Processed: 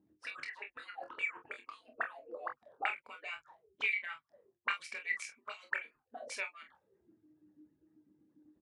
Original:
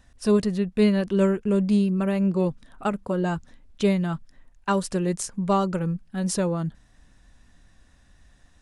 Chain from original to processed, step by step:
harmonic-percussive split with one part muted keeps percussive
envelope filter 280–2,300 Hz, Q 22, up, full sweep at −34.5 dBFS
ambience of single reflections 26 ms −6 dB, 46 ms −11 dB
level +18 dB

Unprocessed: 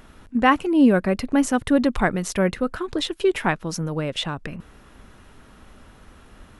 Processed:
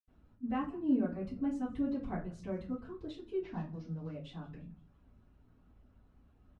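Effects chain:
0:03.31–0:04.06: variable-slope delta modulation 32 kbit/s
reverb reduction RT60 0.7 s
echo with shifted repeats 171 ms, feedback 53%, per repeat −68 Hz, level −23 dB
convolution reverb, pre-delay 77 ms

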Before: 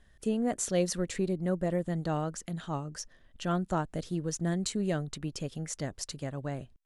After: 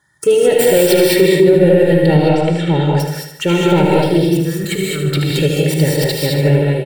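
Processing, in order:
stylus tracing distortion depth 0.045 ms
high-pass filter 140 Hz 24 dB per octave
comb filter 2.2 ms, depth 100%
leveller curve on the samples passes 2
0:04.24–0:05.42: compressor whose output falls as the input rises −34 dBFS, ratio −1
phaser swept by the level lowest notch 470 Hz, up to 1,200 Hz, full sweep at −27.5 dBFS
0:02.06–0:03.00: high-frequency loss of the air 120 metres
on a send: repeating echo 76 ms, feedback 52%, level −8 dB
on the sum: reverb whose tail is shaped and stops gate 240 ms rising, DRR −2 dB
boost into a limiter +13 dB
level −1 dB

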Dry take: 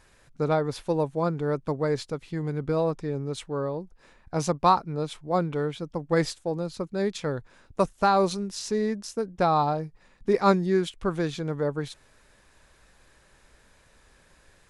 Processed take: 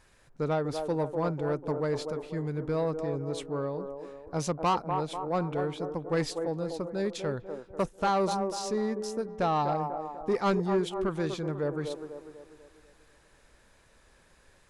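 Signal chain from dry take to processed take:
on a send: delay with a band-pass on its return 246 ms, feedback 47%, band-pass 540 Hz, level −6 dB
on the sum: soft clipping −16.5 dBFS, distortion −15 dB
level −3 dB

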